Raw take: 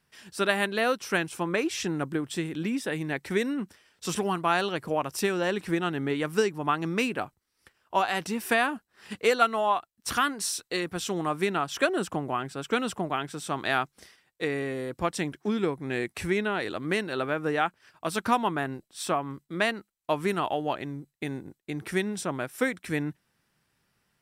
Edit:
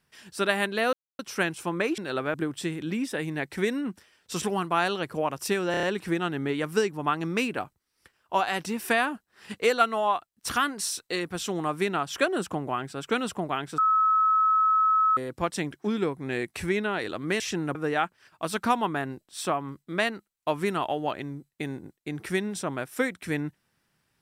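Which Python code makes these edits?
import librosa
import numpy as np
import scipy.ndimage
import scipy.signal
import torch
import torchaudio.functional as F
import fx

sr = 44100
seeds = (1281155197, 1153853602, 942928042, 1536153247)

y = fx.edit(x, sr, fx.insert_silence(at_s=0.93, length_s=0.26),
    fx.swap(start_s=1.72, length_s=0.35, other_s=17.01, other_length_s=0.36),
    fx.stutter(start_s=5.44, slice_s=0.03, count=5),
    fx.bleep(start_s=13.39, length_s=1.39, hz=1290.0, db=-18.5), tone=tone)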